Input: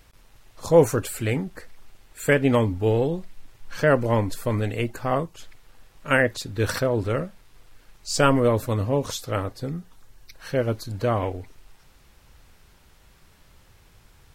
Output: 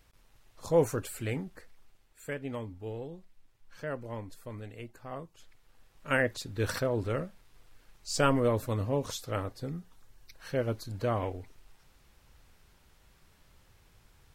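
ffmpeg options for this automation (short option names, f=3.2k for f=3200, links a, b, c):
-af "volume=2dB,afade=t=out:st=1.38:d=0.92:silence=0.354813,afade=t=in:st=5.1:d=1.2:silence=0.281838"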